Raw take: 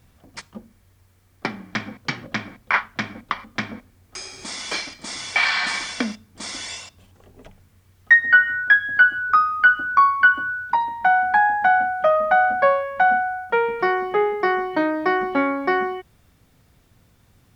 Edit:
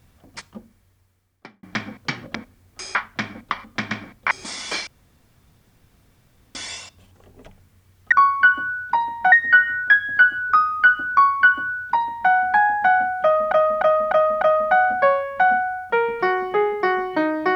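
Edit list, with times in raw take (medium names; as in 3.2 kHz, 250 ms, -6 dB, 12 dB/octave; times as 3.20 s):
0.49–1.63 s: fade out
2.35–2.75 s: swap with 3.71–4.31 s
4.87–6.55 s: room tone
9.92–11.12 s: copy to 8.12 s
12.02–12.32 s: loop, 5 plays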